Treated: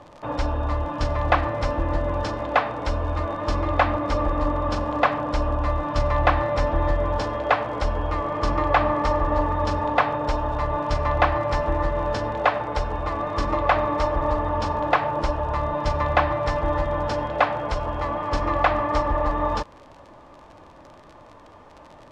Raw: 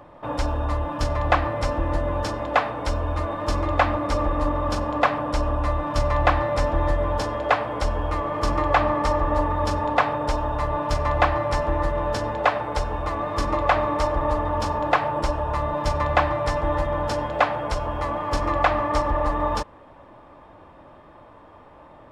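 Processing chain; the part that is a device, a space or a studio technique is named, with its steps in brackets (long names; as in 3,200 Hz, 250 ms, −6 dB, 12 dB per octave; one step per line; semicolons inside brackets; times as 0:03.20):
vinyl LP (surface crackle 54 per second −33 dBFS; pink noise bed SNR 38 dB)
low-pass filter 5,300 Hz 12 dB per octave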